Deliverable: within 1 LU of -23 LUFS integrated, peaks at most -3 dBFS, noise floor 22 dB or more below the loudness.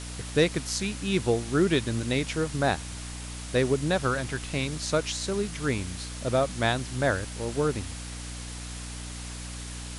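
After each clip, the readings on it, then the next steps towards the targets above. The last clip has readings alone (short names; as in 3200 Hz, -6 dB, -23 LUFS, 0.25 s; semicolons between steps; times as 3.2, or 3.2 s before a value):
hum 60 Hz; harmonics up to 300 Hz; hum level -37 dBFS; noise floor -38 dBFS; noise floor target -51 dBFS; loudness -28.5 LUFS; peak -9.5 dBFS; loudness target -23.0 LUFS
-> de-hum 60 Hz, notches 5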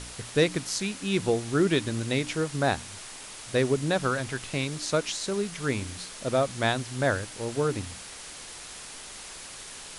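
hum none; noise floor -43 dBFS; noise floor target -50 dBFS
-> noise print and reduce 7 dB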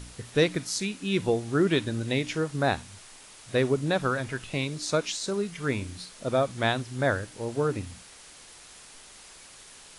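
noise floor -50 dBFS; loudness -28.0 LUFS; peak -10.5 dBFS; loudness target -23.0 LUFS
-> gain +5 dB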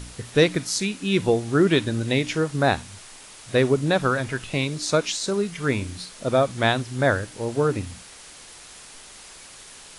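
loudness -23.0 LUFS; peak -5.5 dBFS; noise floor -45 dBFS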